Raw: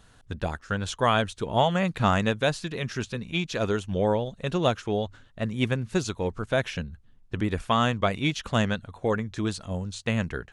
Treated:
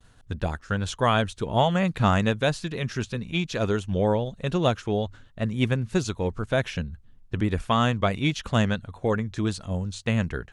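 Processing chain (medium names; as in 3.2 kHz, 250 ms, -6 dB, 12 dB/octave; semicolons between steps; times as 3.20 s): bass shelf 200 Hz +4.5 dB; expander -50 dBFS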